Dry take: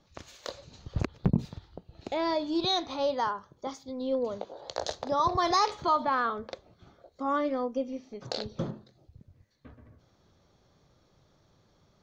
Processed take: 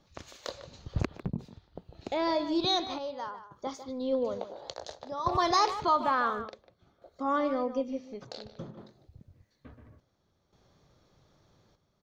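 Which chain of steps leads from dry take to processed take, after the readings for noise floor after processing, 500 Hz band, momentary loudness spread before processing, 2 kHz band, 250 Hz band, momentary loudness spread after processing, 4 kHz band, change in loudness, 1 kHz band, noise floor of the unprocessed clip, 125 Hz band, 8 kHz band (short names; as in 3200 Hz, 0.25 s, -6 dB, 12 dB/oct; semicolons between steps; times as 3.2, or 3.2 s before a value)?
-74 dBFS, -1.0 dB, 17 LU, 0.0 dB, -1.0 dB, 19 LU, -0.5 dB, -0.5 dB, -0.5 dB, -67 dBFS, -4.5 dB, n/a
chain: speakerphone echo 0.15 s, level -11 dB; chopper 0.57 Hz, depth 65%, duty 70%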